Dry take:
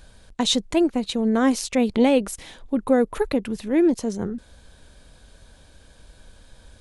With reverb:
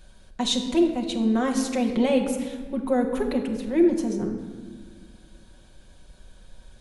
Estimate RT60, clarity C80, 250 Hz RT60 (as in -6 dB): 1.4 s, 8.5 dB, 2.4 s